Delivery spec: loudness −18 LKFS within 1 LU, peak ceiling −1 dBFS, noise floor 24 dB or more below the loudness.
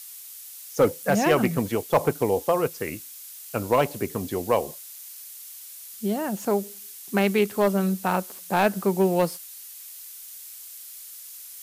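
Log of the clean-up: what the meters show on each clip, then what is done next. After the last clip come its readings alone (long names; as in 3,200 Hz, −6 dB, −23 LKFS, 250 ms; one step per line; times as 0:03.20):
share of clipped samples 0.2%; peaks flattened at −11.5 dBFS; background noise floor −42 dBFS; target noise floor −49 dBFS; integrated loudness −24.5 LKFS; sample peak −11.5 dBFS; target loudness −18.0 LKFS
→ clipped peaks rebuilt −11.5 dBFS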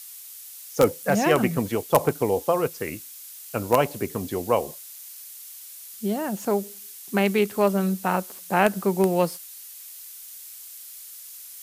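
share of clipped samples 0.0%; background noise floor −42 dBFS; target noise floor −48 dBFS
→ broadband denoise 6 dB, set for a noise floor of −42 dBFS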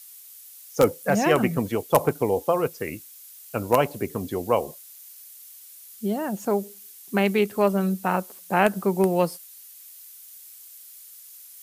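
background noise floor −46 dBFS; target noise floor −48 dBFS
→ broadband denoise 6 dB, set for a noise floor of −46 dBFS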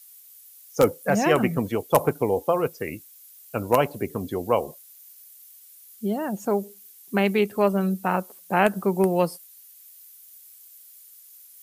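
background noise floor −50 dBFS; integrated loudness −24.5 LKFS; sample peak −2.5 dBFS; target loudness −18.0 LKFS
→ level +6.5 dB
brickwall limiter −1 dBFS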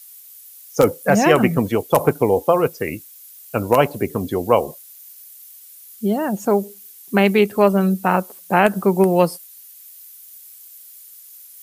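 integrated loudness −18.5 LKFS; sample peak −1.0 dBFS; background noise floor −43 dBFS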